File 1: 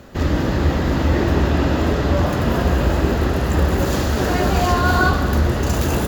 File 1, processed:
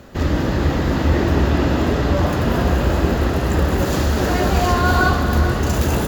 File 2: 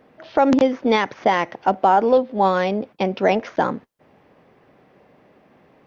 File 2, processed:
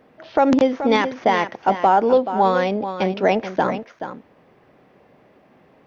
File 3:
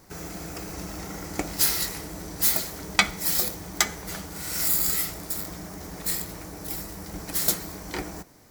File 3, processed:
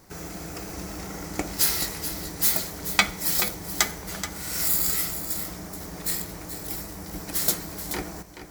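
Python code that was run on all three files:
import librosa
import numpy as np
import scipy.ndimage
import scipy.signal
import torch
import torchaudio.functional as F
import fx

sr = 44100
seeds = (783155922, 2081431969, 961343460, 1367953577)

y = x + 10.0 ** (-10.5 / 20.0) * np.pad(x, (int(429 * sr / 1000.0), 0))[:len(x)]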